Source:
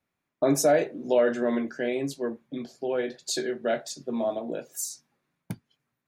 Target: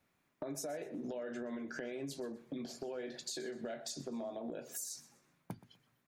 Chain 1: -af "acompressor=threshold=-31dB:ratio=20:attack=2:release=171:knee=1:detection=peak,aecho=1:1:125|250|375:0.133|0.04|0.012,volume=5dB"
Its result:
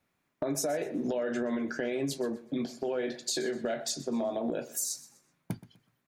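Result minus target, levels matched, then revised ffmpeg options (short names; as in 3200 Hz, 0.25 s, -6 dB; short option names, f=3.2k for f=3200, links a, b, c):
compressor: peak gain reduction -10.5 dB
-af "acompressor=threshold=-42dB:ratio=20:attack=2:release=171:knee=1:detection=peak,aecho=1:1:125|250|375:0.133|0.04|0.012,volume=5dB"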